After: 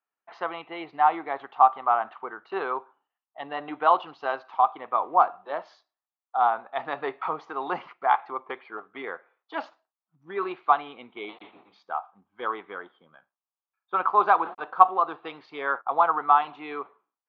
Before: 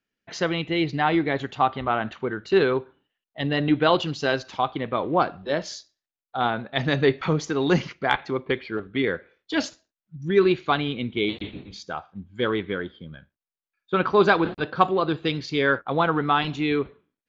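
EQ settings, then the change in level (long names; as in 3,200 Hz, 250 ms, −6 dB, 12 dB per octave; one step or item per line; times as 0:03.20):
band-pass filter 500–2,700 Hz
high-frequency loss of the air 130 metres
flat-topped bell 950 Hz +12.5 dB 1.1 octaves
−7.0 dB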